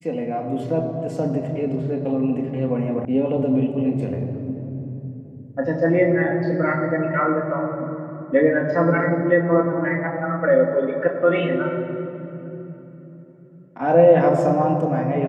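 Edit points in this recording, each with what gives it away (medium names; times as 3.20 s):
3.05 s: sound stops dead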